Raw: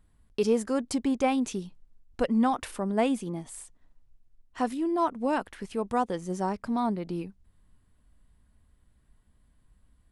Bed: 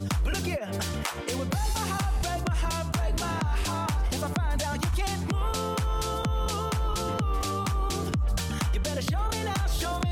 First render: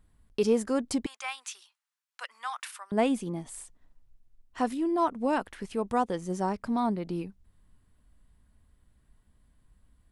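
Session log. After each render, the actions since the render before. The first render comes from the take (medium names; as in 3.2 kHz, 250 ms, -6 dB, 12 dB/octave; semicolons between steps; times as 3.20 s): 1.06–2.92 s: high-pass 1.1 kHz 24 dB/octave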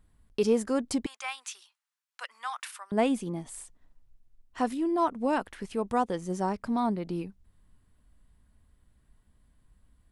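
no audible change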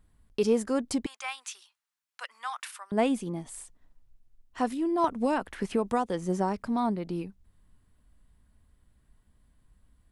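5.04–6.63 s: three bands compressed up and down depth 100%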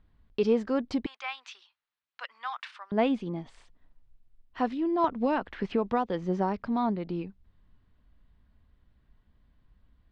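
low-pass 4.3 kHz 24 dB/octave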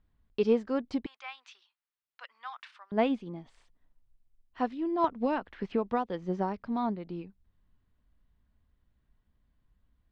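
upward expansion 1.5:1, over -35 dBFS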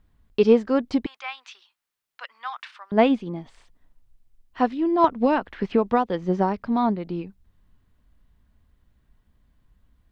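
trim +9 dB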